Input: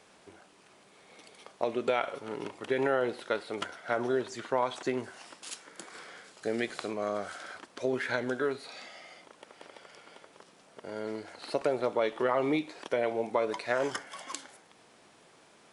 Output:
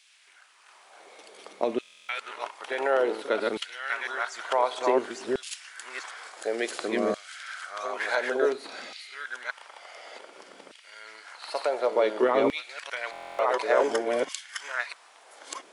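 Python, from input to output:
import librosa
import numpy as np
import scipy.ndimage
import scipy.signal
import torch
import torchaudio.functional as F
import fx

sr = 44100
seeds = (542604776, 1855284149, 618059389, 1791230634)

y = fx.reverse_delay(x, sr, ms=679, wet_db=-1.5)
y = fx.filter_lfo_highpass(y, sr, shape='saw_down', hz=0.56, low_hz=200.0, high_hz=3000.0, q=1.4)
y = fx.buffer_glitch(y, sr, at_s=(1.81, 13.11), block=1024, repeats=11)
y = y * librosa.db_to_amplitude(2.5)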